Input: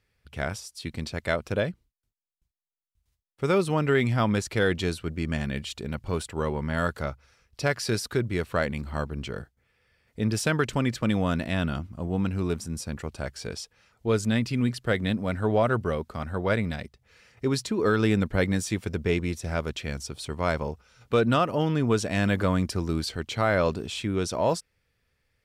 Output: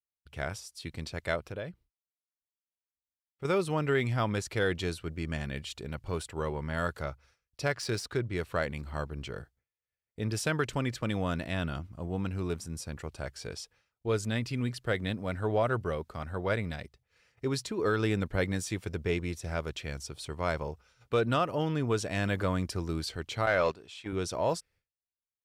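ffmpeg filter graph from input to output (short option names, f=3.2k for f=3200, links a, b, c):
-filter_complex "[0:a]asettb=1/sr,asplit=3[a][b][c];[a]atrim=end=1.404[d];[b]atrim=start=1.4:end=3.45,asetpts=PTS-STARTPTS,afade=t=in:d=0.004:c=qsin,afade=t=out:st=2.046:d=0.004:c=qsin,acompressor=threshold=-34dB:ratio=2:attack=3.2:release=140:knee=1:detection=peak,equalizer=f=7.2k:w=0.91:g=-4.5[e];[c]atrim=start=3.446[f];[d][e]acrossfade=d=0.004:c1=hsin:c2=qsin[g];[g][f]acrossfade=d=0.004:c1=qsin:c2=hsin,asettb=1/sr,asplit=3[h][i][j];[h]atrim=end=7.724[k];[i]atrim=start=7.72:end=8.37,asetpts=PTS-STARTPTS,afade=t=in:d=0.004:c=qsin,afade=t=out:st=0.646:d=0.004:c=qsin,highshelf=f=9.4k:g=7.5,adynamicsmooth=sensitivity=3.5:basefreq=5.6k[l];[j]atrim=start=8.366[m];[k][l]acrossfade=d=0.004:c1=hsin:c2=qsin[n];[n][m]acrossfade=d=0.004:c1=qsin:c2=hsin,asettb=1/sr,asplit=3[o][p][q];[o]atrim=end=23.464[r];[p]atrim=start=23.46:end=24.13,asetpts=PTS-STARTPTS,afade=t=in:d=0.004:c=qsin,afade=t=out:st=0.666:d=0.004:c=qsin,highpass=41,agate=range=-13dB:threshold=-28dB:ratio=16:release=100:detection=peak,asplit=2[s][t];[t]highpass=f=720:p=1,volume=11dB,asoftclip=type=tanh:threshold=-10.5dB[u];[s][u]amix=inputs=2:normalize=0,lowpass=f=5.1k:p=1,volume=-6dB[v];[q]atrim=start=24.126[w];[r][v]acrossfade=d=0.004:c1=hsin:c2=qsin[x];[x][w]acrossfade=d=0.004:c1=qsin:c2=hsin,agate=range=-33dB:threshold=-51dB:ratio=3:detection=peak,equalizer=f=220:t=o:w=0.49:g=-5.5,volume=-4.5dB"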